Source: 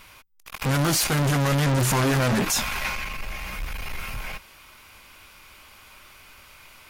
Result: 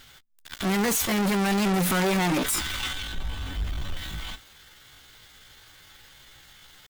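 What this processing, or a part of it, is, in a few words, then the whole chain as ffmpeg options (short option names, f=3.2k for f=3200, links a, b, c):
chipmunk voice: -filter_complex "[0:a]asetrate=62367,aresample=44100,atempo=0.707107,asettb=1/sr,asplit=3[a][b][c];[a]atrim=end=3.134[d];[b]atrim=start=3.13:end=3.97,asetpts=PTS-STARTPTS,afade=t=in:d=0.004:c=qsin,afade=t=out:st=0.836:d=0.004:c=qsin,tiltshelf=f=1.2k:g=5[e];[c]atrim=start=3.966[f];[d][e]acrossfade=d=0.004:c1=hsin:c2=qsin[g];[g][f]acrossfade=d=0.004:c1=qsin:c2=hsin,volume=-2dB"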